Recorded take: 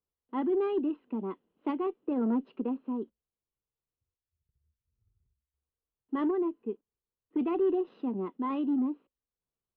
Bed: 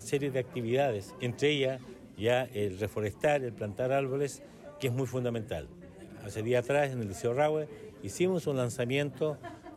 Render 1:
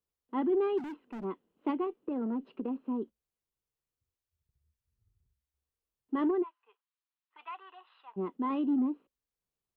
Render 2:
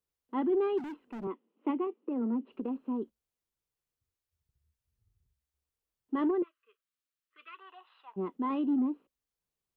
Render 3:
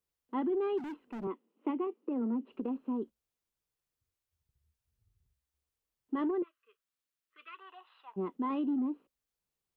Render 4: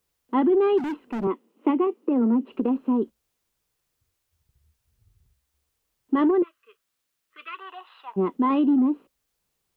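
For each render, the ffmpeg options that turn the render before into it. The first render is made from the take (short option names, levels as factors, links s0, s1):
-filter_complex "[0:a]asplit=3[s0][s1][s2];[s0]afade=t=out:st=0.77:d=0.02[s3];[s1]asoftclip=type=hard:threshold=0.0119,afade=t=in:st=0.77:d=0.02,afade=t=out:st=1.23:d=0.02[s4];[s2]afade=t=in:st=1.23:d=0.02[s5];[s3][s4][s5]amix=inputs=3:normalize=0,asettb=1/sr,asplit=3[s6][s7][s8];[s6]atrim=end=1.844[s9];[s7]atrim=start=1.84:end=2.81,asetpts=PTS-STARTPTS,afade=t=in:d=0.004:c=qsin,afade=t=out:st=0.966:d=0.004:c=qsin,acompressor=threshold=0.0316:ratio=6:attack=3.2:release=140:knee=1:detection=peak[s10];[s8]atrim=start=2.806[s11];[s9][s10]acrossfade=d=0.004:c1=hsin:c2=qsin[s12];[s12][s11]acrossfade=d=0.004:c1=qsin:c2=hsin,asplit=3[s13][s14][s15];[s13]afade=t=out:st=6.42:d=0.02[s16];[s14]asuperpass=centerf=2000:order=8:qfactor=0.59,afade=t=in:st=6.42:d=0.02,afade=t=out:st=8.16:d=0.02[s17];[s15]afade=t=in:st=8.16:d=0.02[s18];[s16][s17][s18]amix=inputs=3:normalize=0"
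-filter_complex "[0:a]asettb=1/sr,asplit=3[s0][s1][s2];[s0]atrim=end=1.274[s3];[s1]atrim=start=1.27:end=2.52,asetpts=PTS-STARTPTS,afade=t=in:d=0.004:c=qsin,afade=t=out:st=1.246:d=0.004:c=qsin,highpass=f=230:w=0.5412,highpass=f=230:w=1.3066,equalizer=f=230:t=q:w=4:g=6,equalizer=f=680:t=q:w=4:g=-4,equalizer=f=1600:t=q:w=4:g=-6,lowpass=f=3100:w=0.5412,lowpass=f=3100:w=1.3066[s4];[s2]atrim=start=2.516[s5];[s3][s4]acrossfade=d=0.004:c1=hsin:c2=qsin[s6];[s6][s5]acrossfade=d=0.004:c1=qsin:c2=hsin,asettb=1/sr,asplit=3[s7][s8][s9];[s7]atrim=end=6.424[s10];[s8]atrim=start=6.42:end=7.59,asetpts=PTS-STARTPTS,afade=t=in:d=0.004:c=qsin,afade=t=out:st=1.166:d=0.004:c=qsin,asuperstop=centerf=840:order=12:qfactor=1.8[s11];[s9]atrim=start=7.586[s12];[s10][s11]acrossfade=d=0.004:c1=hsin:c2=qsin[s13];[s13][s12]acrossfade=d=0.004:c1=qsin:c2=hsin"
-af "acompressor=threshold=0.0355:ratio=4"
-af "volume=3.98"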